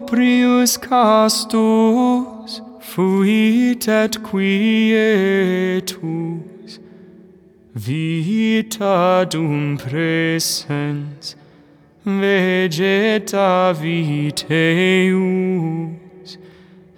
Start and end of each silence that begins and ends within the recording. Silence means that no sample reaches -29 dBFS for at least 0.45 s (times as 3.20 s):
6.76–7.75 s
11.32–12.06 s